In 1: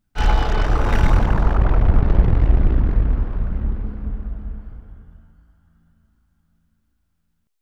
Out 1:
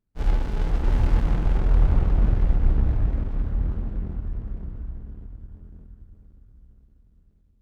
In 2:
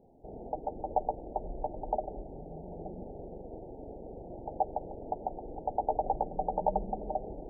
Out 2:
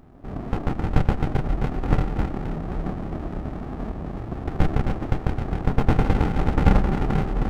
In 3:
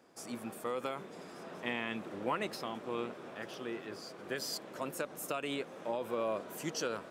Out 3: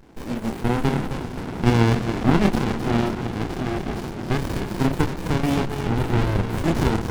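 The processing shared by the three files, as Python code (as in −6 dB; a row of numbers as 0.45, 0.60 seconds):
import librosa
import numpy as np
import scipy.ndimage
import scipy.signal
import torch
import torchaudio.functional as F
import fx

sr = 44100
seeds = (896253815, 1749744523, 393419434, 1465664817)

y = fx.echo_split(x, sr, split_hz=300.0, low_ms=580, high_ms=263, feedback_pct=52, wet_db=-6)
y = fx.chorus_voices(y, sr, voices=2, hz=0.52, base_ms=27, depth_ms=3.8, mix_pct=40)
y = fx.running_max(y, sr, window=65)
y = y * 10.0 ** (-22 / 20.0) / np.sqrt(np.mean(np.square(y)))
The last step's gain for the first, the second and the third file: −3.0, +17.5, +21.0 decibels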